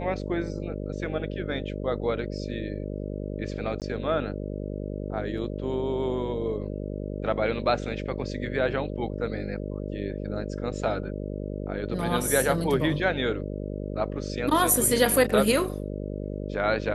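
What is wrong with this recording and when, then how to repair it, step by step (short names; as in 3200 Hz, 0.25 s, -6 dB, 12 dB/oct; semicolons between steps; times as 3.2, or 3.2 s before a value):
buzz 50 Hz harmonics 12 -33 dBFS
3.8–3.82 gap 18 ms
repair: de-hum 50 Hz, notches 12; interpolate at 3.8, 18 ms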